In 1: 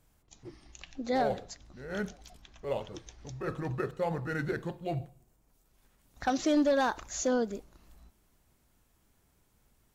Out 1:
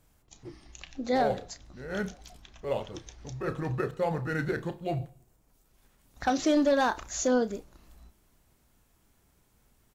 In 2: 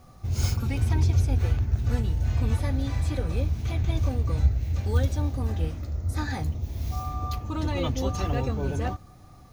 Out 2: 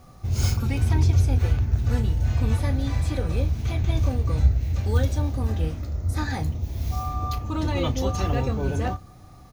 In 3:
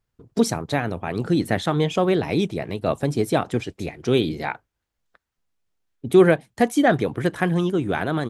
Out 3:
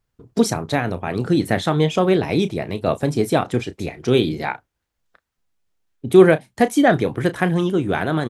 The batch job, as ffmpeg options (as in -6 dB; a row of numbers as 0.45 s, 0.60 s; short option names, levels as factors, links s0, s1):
-filter_complex "[0:a]asplit=2[s0][s1];[s1]adelay=32,volume=0.224[s2];[s0][s2]amix=inputs=2:normalize=0,volume=1.33"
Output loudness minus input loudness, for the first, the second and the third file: +2.5 LU, +2.5 LU, +3.0 LU